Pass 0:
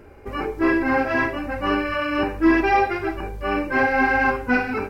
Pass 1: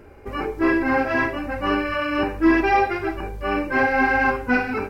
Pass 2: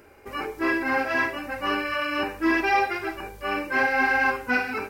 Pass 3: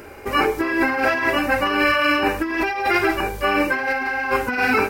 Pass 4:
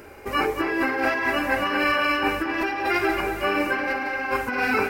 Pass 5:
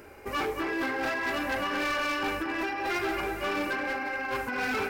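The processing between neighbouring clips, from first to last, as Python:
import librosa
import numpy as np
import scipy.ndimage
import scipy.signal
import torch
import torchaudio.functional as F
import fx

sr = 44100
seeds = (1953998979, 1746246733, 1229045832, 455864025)

y1 = x
y2 = fx.tilt_eq(y1, sr, slope=2.5)
y2 = F.gain(torch.from_numpy(y2), -3.0).numpy()
y3 = fx.over_compress(y2, sr, threshold_db=-29.0, ratio=-1.0)
y3 = F.gain(torch.from_numpy(y3), 9.0).numpy()
y4 = fx.echo_wet_lowpass(y3, sr, ms=230, feedback_pct=53, hz=3900.0, wet_db=-7.5)
y4 = F.gain(torch.from_numpy(y4), -4.5).numpy()
y5 = np.clip(10.0 ** (21.0 / 20.0) * y4, -1.0, 1.0) / 10.0 ** (21.0 / 20.0)
y5 = F.gain(torch.from_numpy(y5), -5.0).numpy()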